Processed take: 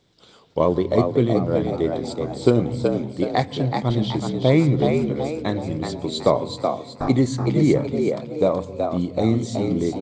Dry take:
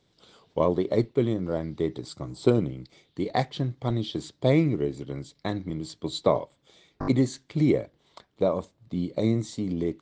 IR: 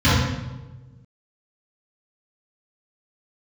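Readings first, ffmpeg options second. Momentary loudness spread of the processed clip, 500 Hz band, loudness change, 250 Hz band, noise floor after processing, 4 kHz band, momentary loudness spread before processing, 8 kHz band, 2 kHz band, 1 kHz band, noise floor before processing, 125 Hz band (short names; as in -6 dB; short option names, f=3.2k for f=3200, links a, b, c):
7 LU, +6.5 dB, +6.0 dB, +6.0 dB, -50 dBFS, +6.0 dB, 11 LU, +6.0 dB, +6.0 dB, +7.5 dB, -69 dBFS, +6.0 dB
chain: -filter_complex "[0:a]asplit=6[a][b][c][d][e][f];[b]adelay=375,afreqshift=77,volume=-5dB[g];[c]adelay=750,afreqshift=154,volume=-13dB[h];[d]adelay=1125,afreqshift=231,volume=-20.9dB[i];[e]adelay=1500,afreqshift=308,volume=-28.9dB[j];[f]adelay=1875,afreqshift=385,volume=-36.8dB[k];[a][g][h][i][j][k]amix=inputs=6:normalize=0,asplit=2[l][m];[1:a]atrim=start_sample=2205,adelay=110[n];[m][n]afir=irnorm=-1:irlink=0,volume=-44dB[o];[l][o]amix=inputs=2:normalize=0,volume=4.5dB"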